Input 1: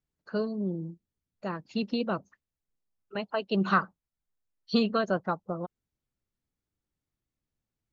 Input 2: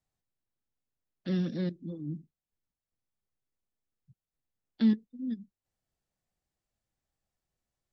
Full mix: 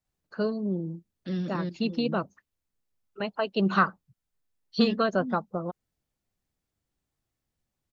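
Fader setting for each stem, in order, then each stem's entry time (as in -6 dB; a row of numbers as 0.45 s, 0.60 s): +2.0 dB, -1.0 dB; 0.05 s, 0.00 s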